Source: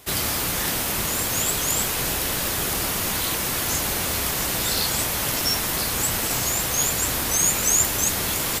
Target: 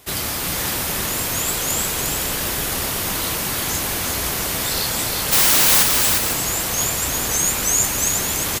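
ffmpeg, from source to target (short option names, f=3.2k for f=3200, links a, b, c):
-filter_complex "[0:a]asplit=3[a][b][c];[a]afade=t=out:st=5.31:d=0.02[d];[b]aeval=exprs='0.266*sin(PI/2*10*val(0)/0.266)':c=same,afade=t=in:st=5.31:d=0.02,afade=t=out:st=5.82:d=0.02[e];[c]afade=t=in:st=5.82:d=0.02[f];[d][e][f]amix=inputs=3:normalize=0,aecho=1:1:353|504:0.596|0.316"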